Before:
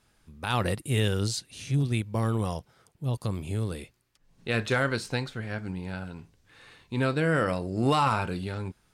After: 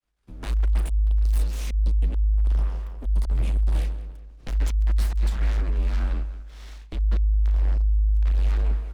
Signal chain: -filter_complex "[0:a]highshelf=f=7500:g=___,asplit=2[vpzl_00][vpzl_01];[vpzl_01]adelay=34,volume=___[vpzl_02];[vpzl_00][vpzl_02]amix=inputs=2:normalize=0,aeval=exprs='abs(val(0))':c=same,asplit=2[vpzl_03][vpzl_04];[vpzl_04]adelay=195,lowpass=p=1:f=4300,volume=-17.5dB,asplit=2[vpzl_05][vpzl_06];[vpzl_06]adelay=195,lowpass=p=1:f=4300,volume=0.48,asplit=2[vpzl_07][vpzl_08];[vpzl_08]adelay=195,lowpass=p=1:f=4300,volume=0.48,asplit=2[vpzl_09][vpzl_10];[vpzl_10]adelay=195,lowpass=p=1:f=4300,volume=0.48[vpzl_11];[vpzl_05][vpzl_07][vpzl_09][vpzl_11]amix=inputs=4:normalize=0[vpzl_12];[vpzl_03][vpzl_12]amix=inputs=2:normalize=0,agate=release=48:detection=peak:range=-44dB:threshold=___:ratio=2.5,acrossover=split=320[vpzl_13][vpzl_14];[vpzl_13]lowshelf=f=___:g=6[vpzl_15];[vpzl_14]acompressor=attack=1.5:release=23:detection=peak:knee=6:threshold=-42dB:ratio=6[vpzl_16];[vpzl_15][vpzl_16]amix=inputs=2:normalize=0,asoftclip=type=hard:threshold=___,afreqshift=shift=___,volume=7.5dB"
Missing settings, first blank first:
-9, -12dB, -52dB, 110, -26.5dB, -52